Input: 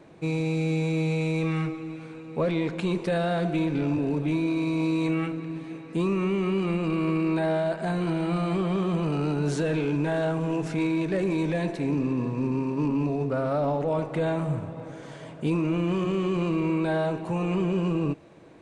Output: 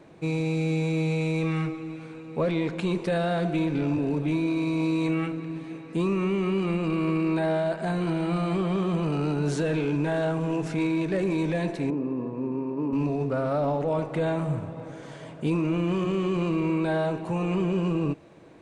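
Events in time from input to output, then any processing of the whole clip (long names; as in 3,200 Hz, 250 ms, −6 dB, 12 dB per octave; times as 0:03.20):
0:11.90–0:12.93: resonant band-pass 470 Hz, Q 0.75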